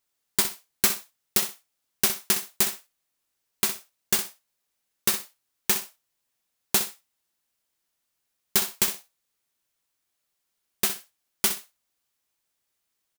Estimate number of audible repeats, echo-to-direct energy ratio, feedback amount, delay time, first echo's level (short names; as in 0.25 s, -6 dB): 2, -11.0 dB, 18%, 63 ms, -11.0 dB